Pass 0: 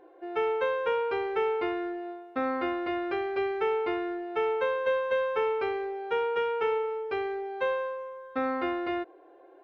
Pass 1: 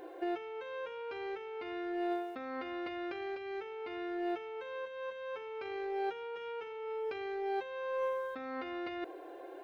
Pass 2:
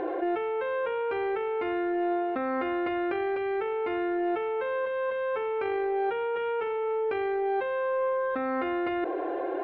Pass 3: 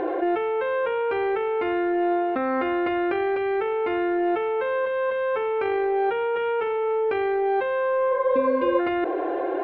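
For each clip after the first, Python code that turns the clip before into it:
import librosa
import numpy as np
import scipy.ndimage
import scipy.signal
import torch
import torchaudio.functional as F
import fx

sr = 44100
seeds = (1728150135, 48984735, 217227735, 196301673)

y1 = fx.peak_eq(x, sr, hz=1100.0, db=-2.5, octaves=0.77)
y1 = fx.over_compress(y1, sr, threshold_db=-39.0, ratio=-1.0)
y1 = fx.high_shelf(y1, sr, hz=3100.0, db=11.0)
y1 = F.gain(torch.from_numpy(y1), -1.5).numpy()
y2 = scipy.signal.sosfilt(scipy.signal.butter(2, 2000.0, 'lowpass', fs=sr, output='sos'), y1)
y2 = fx.env_flatten(y2, sr, amount_pct=70)
y2 = F.gain(torch.from_numpy(y2), 6.0).numpy()
y3 = fx.spec_repair(y2, sr, seeds[0], start_s=8.15, length_s=0.62, low_hz=500.0, high_hz=2300.0, source='before')
y3 = F.gain(torch.from_numpy(y3), 5.0).numpy()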